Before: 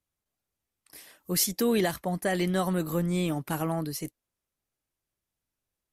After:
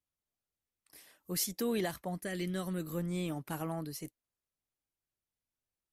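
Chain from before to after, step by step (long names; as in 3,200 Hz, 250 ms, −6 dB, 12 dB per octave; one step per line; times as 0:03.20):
0:02.20–0:02.96: parametric band 830 Hz −14 dB → −7.5 dB 0.9 octaves
level −8 dB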